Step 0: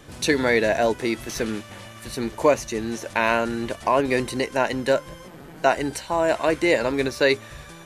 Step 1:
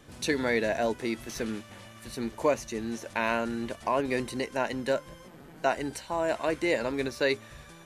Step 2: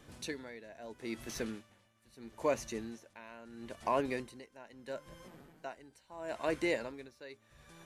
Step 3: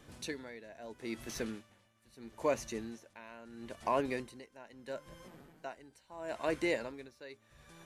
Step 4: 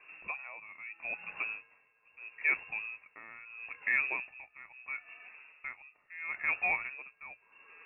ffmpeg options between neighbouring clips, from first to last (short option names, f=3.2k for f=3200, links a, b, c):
-af "equalizer=f=230:w=5.5:g=3.5,volume=-7.5dB"
-af "aeval=exprs='val(0)*pow(10,-20*(0.5-0.5*cos(2*PI*0.76*n/s))/20)':c=same,volume=-4dB"
-af anull
-af "lowpass=f=2.4k:t=q:w=0.5098,lowpass=f=2.4k:t=q:w=0.6013,lowpass=f=2.4k:t=q:w=0.9,lowpass=f=2.4k:t=q:w=2.563,afreqshift=-2800,bandreject=f=60:t=h:w=6,bandreject=f=120:t=h:w=6,volume=1.5dB"